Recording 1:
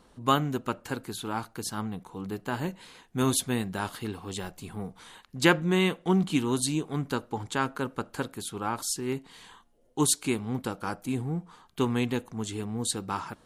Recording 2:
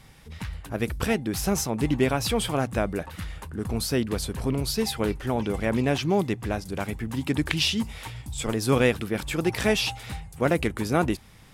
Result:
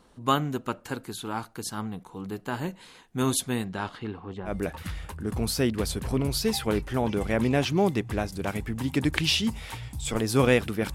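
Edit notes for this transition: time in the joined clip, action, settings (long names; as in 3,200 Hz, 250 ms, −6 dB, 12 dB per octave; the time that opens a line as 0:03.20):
recording 1
0:03.64–0:04.55: low-pass filter 7,300 Hz → 1,000 Hz
0:04.50: continue with recording 2 from 0:02.83, crossfade 0.10 s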